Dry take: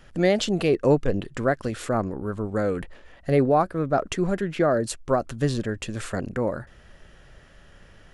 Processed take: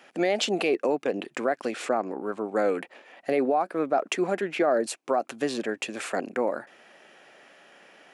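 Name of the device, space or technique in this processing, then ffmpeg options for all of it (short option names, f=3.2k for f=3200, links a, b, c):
laptop speaker: -filter_complex "[0:a]asettb=1/sr,asplit=3[a][b][c];[a]atrim=end=1.714[d];[b]atrim=start=1.71:end=2.57,asetpts=PTS-STARTPTS,afade=t=in:d=0.004:c=qsin,afade=t=out:st=0.856:d=0.004:c=qsin,lowpass=9k[e];[c]atrim=start=2.566[f];[d][e]acrossfade=d=0.004:c1=hsin:c2=qsin[g];[g][f]acrossfade=d=0.004:c1=qsin:c2=hsin,highpass=f=250:w=0.5412,highpass=f=250:w=1.3066,equalizer=f=770:t=o:w=0.51:g=7,equalizer=f=2.4k:t=o:w=0.41:g=7.5,alimiter=limit=-14.5dB:level=0:latency=1:release=105"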